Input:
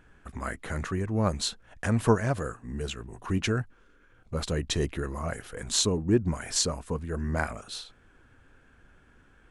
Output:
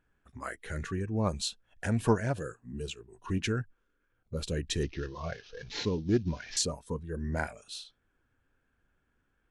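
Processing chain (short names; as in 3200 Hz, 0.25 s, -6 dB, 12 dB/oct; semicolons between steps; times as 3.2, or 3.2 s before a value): 4.83–6.57 CVSD 32 kbps; spectral noise reduction 13 dB; Doppler distortion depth 0.12 ms; gain -3.5 dB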